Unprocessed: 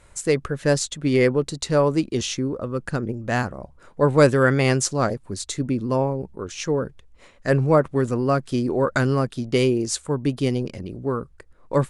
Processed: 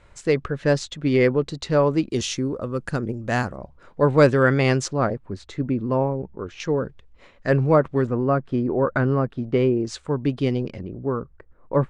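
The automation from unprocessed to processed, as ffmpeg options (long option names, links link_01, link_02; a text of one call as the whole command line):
ffmpeg -i in.wav -af "asetnsamples=nb_out_samples=441:pad=0,asendcmd='2.1 lowpass f 9800;3.56 lowpass f 4800;4.88 lowpass f 2300;6.6 lowpass f 4300;8.07 lowpass f 1700;9.87 lowpass f 3600;10.83 lowpass f 1600',lowpass=4200" out.wav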